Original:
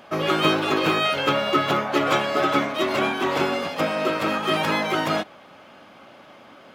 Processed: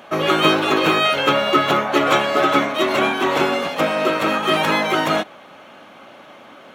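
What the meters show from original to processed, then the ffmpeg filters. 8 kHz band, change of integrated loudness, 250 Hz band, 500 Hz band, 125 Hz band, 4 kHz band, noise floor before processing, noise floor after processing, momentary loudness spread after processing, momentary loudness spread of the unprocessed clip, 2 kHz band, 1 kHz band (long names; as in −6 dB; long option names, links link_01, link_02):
+5.0 dB, +4.5 dB, +3.5 dB, +4.5 dB, +1.5 dB, +5.0 dB, −48 dBFS, −44 dBFS, 4 LU, 4 LU, +5.0 dB, +5.0 dB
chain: -af "lowshelf=frequency=110:gain=-9.5,bandreject=frequency=4900:width=8.3,volume=5dB"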